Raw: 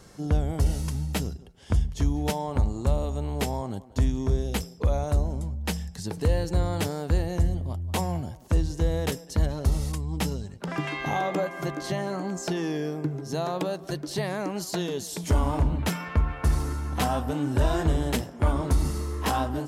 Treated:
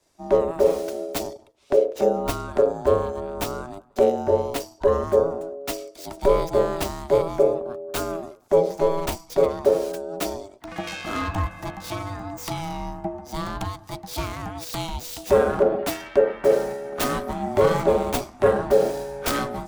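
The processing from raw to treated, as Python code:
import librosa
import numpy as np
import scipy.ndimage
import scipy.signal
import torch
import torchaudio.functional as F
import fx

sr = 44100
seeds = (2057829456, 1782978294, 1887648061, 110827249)

y = fx.tracing_dist(x, sr, depth_ms=0.24)
y = y * np.sin(2.0 * np.pi * 490.0 * np.arange(len(y)) / sr)
y = fx.band_widen(y, sr, depth_pct=70)
y = F.gain(torch.from_numpy(y), 5.0).numpy()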